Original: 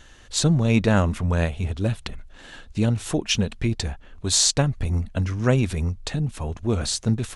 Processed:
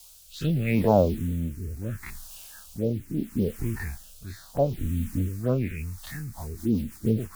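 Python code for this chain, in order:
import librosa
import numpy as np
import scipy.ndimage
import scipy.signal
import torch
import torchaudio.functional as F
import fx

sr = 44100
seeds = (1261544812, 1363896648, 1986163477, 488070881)

y = fx.spec_dilate(x, sr, span_ms=60)
y = fx.filter_lfo_lowpass(y, sr, shape='sine', hz=0.55, low_hz=240.0, high_hz=3000.0, q=4.5)
y = fx.quant_dither(y, sr, seeds[0], bits=6, dither='triangular')
y = fx.env_phaser(y, sr, low_hz=270.0, high_hz=1800.0, full_db=-10.0)
y = fx.rotary_switch(y, sr, hz=0.75, then_hz=7.0, switch_at_s=5.87)
y = fx.band_widen(y, sr, depth_pct=40)
y = y * librosa.db_to_amplitude(-7.0)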